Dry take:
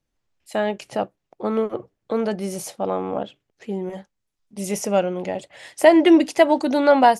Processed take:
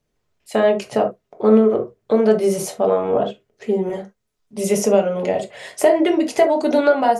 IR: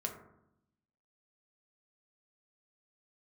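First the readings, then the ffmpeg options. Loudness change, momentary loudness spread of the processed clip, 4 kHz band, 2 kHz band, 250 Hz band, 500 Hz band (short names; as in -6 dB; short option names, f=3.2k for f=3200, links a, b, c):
+2.5 dB, 11 LU, -1.0 dB, -1.0 dB, +0.5 dB, +4.0 dB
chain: -filter_complex "[0:a]equalizer=f=490:w=1.8:g=4,acompressor=threshold=-18dB:ratio=12[a];[1:a]atrim=start_sample=2205,atrim=end_sample=3528[b];[a][b]afir=irnorm=-1:irlink=0,volume=5.5dB"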